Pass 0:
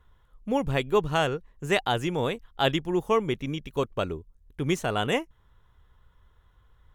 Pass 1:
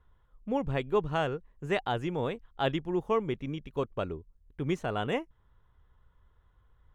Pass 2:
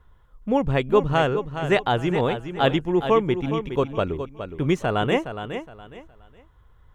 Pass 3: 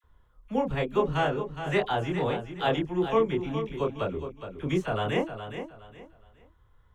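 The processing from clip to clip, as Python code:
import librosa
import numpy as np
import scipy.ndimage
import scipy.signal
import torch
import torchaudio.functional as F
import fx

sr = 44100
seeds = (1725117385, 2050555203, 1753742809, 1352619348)

y1 = fx.lowpass(x, sr, hz=2000.0, slope=6)
y1 = F.gain(torch.from_numpy(y1), -4.0).numpy()
y2 = fx.echo_feedback(y1, sr, ms=416, feedback_pct=27, wet_db=-9.5)
y2 = F.gain(torch.from_numpy(y2), 9.0).numpy()
y3 = fx.doubler(y2, sr, ms=27.0, db=-3.0)
y3 = fx.dispersion(y3, sr, late='lows', ms=40.0, hz=980.0)
y3 = F.gain(torch.from_numpy(y3), -7.5).numpy()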